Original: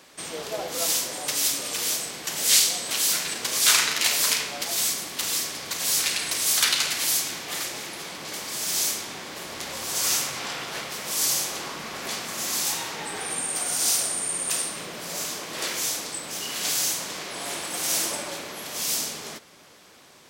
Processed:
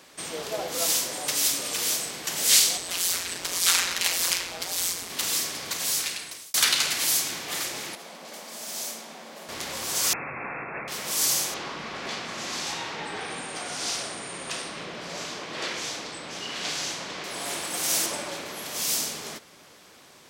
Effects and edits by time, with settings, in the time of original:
2.77–5.10 s: ring modulator 88 Hz
5.69–6.54 s: fade out
7.95–9.49 s: rippled Chebyshev high-pass 160 Hz, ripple 9 dB
10.13–10.88 s: brick-wall FIR low-pass 2.7 kHz
11.54–17.24 s: low-pass 4.5 kHz
18.06–18.46 s: treble shelf 9.5 kHz -8.5 dB

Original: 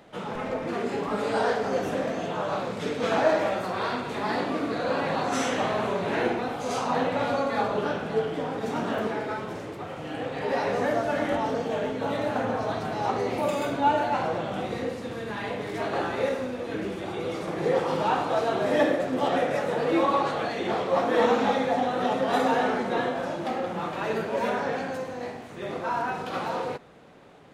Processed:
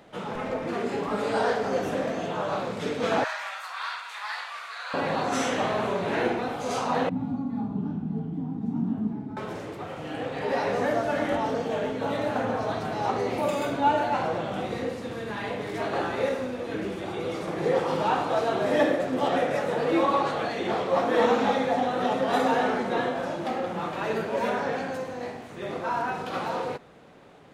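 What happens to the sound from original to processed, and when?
3.24–4.94 s: inverse Chebyshev high-pass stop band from 180 Hz, stop band 80 dB
7.09–9.37 s: FFT filter 110 Hz 0 dB, 180 Hz +8 dB, 260 Hz +5 dB, 550 Hz -27 dB, 780 Hz -12 dB, 1.6 kHz -25 dB

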